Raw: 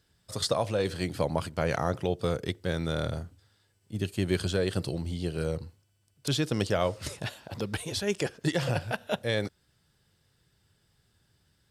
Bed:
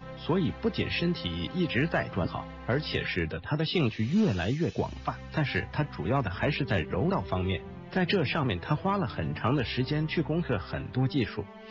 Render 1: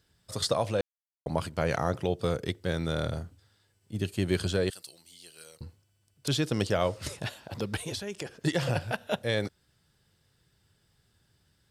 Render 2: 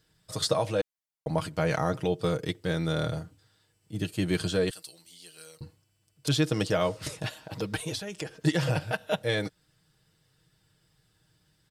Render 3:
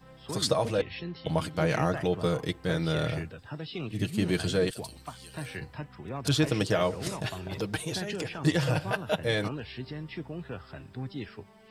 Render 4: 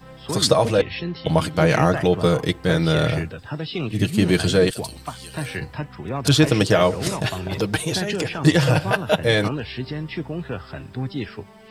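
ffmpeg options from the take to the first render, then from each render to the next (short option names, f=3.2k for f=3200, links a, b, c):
-filter_complex "[0:a]asettb=1/sr,asplit=3[a][b][c];[a]atrim=end=4.704[d];[b]atrim=start=4.7:end=5.61,asetpts=PTS-STARTPTS,afade=t=in:d=0.004:c=qsin,afade=t=out:st=0.906:d=0.004:c=qsin,aderivative[e];[c]atrim=start=5.606[f];[d][e]acrossfade=d=0.004:c1=hsin:c2=qsin[g];[g][f]acrossfade=d=0.004:c1=qsin:c2=hsin,asettb=1/sr,asplit=3[h][i][j];[h]atrim=end=7.954[k];[i]atrim=start=7.95:end=8.42,asetpts=PTS-STARTPTS,afade=t=in:d=0.004:c=qsin,afade=t=out:st=0.466:d=0.004:c=qsin,acompressor=threshold=-35dB:ratio=3:attack=3.2:release=140:knee=1:detection=peak[l];[j]atrim=start=8.416[m];[k][l]acrossfade=d=0.004:c1=hsin:c2=qsin[n];[n][m]acrossfade=d=0.004:c1=qsin:c2=hsin,asplit=3[o][p][q];[o]atrim=end=0.81,asetpts=PTS-STARTPTS,afade=t=out:st=0.806:d=0.004:c=hsin[r];[p]atrim=start=0.81:end=1.26,asetpts=PTS-STARTPTS,volume=0[s];[q]atrim=start=1.26,asetpts=PTS-STARTPTS,afade=t=in:d=0.004:c=hsin[t];[r][s][t]concat=n=3:v=0:a=1"
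-af "aecho=1:1:6.4:0.57"
-filter_complex "[1:a]volume=-10dB[a];[0:a][a]amix=inputs=2:normalize=0"
-af "volume=9.5dB"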